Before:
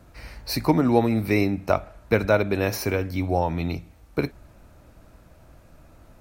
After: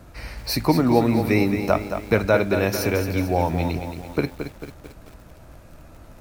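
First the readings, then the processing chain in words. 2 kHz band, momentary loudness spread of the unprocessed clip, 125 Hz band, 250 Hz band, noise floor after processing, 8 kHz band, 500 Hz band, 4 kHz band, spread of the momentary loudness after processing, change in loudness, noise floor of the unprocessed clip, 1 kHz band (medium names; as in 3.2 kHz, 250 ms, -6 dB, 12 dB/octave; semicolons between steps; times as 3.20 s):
+2.5 dB, 12 LU, +2.0 dB, +2.5 dB, -47 dBFS, +3.5 dB, +2.0 dB, +3.5 dB, 16 LU, +2.0 dB, -53 dBFS, +2.0 dB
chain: in parallel at -1 dB: compression, threshold -33 dBFS, peak gain reduction 19 dB; on the sum: bit-crushed delay 222 ms, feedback 55%, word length 7-bit, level -8 dB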